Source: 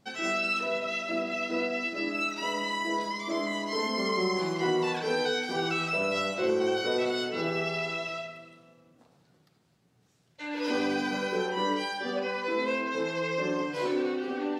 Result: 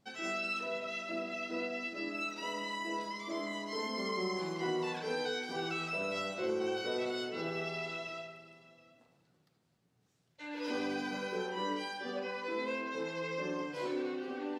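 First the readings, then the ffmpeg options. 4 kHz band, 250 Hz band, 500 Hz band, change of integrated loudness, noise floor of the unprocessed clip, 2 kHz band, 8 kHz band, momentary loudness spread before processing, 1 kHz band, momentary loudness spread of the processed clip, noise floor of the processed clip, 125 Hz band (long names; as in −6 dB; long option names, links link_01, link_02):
−7.5 dB, −7.5 dB, −7.5 dB, −7.5 dB, −67 dBFS, −7.5 dB, −7.5 dB, 4 LU, −7.5 dB, 4 LU, −73 dBFS, −7.5 dB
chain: -af "aecho=1:1:726:0.0891,volume=-7.5dB"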